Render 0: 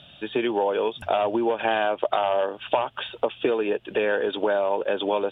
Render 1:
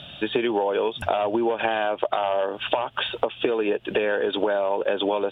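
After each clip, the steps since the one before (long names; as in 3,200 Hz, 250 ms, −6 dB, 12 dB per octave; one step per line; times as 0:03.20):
downward compressor, threshold −28 dBFS, peak gain reduction 11.5 dB
level +8 dB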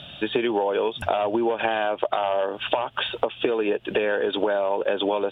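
no processing that can be heard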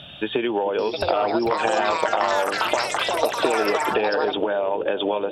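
delay with pitch and tempo change per echo 787 ms, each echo +7 semitones, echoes 3
bucket-brigade delay 433 ms, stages 2,048, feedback 68%, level −12 dB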